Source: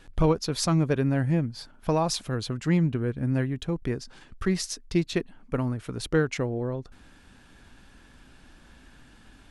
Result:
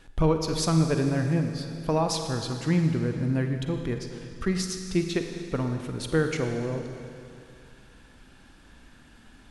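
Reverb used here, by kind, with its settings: Schroeder reverb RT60 2.5 s, DRR 5 dB; gain -1 dB

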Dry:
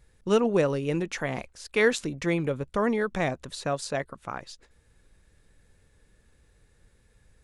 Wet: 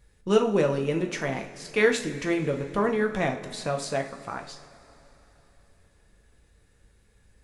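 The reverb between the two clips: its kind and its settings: two-slope reverb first 0.39 s, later 3.5 s, from -18 dB, DRR 2.5 dB; gain -1 dB

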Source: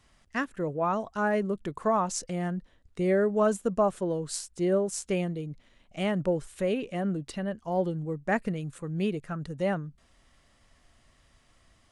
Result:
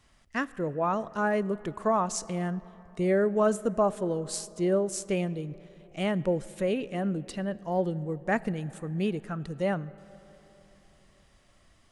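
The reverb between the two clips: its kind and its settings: digital reverb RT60 3.9 s, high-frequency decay 0.45×, pre-delay 5 ms, DRR 18.5 dB

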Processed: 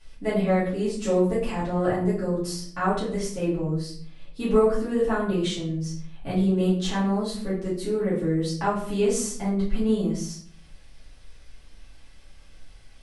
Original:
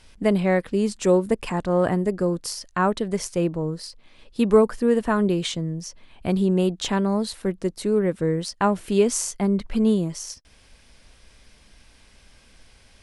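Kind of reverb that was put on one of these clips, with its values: shoebox room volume 69 m³, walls mixed, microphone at 2.4 m; gain -13 dB

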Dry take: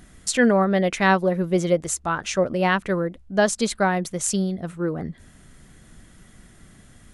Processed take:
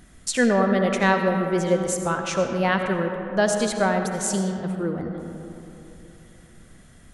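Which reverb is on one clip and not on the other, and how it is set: digital reverb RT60 3.1 s, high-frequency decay 0.4×, pre-delay 40 ms, DRR 4.5 dB; gain -2 dB

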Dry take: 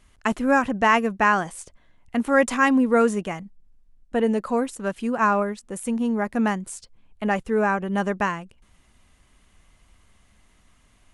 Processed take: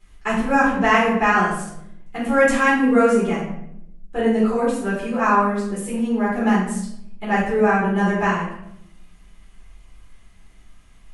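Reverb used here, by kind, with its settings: shoebox room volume 180 m³, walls mixed, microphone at 4 m; gain -8.5 dB

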